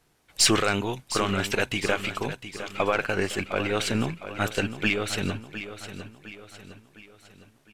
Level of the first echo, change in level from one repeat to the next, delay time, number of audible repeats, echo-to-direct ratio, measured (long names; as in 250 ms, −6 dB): −11.5 dB, −6.5 dB, 708 ms, 4, −10.5 dB